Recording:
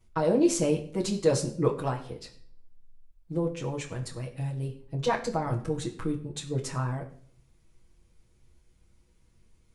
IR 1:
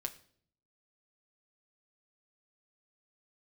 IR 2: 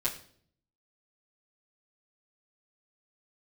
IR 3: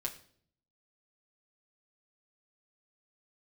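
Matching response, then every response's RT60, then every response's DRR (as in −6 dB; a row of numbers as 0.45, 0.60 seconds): 2; non-exponential decay, non-exponential decay, non-exponential decay; 3.5, −8.0, −1.0 decibels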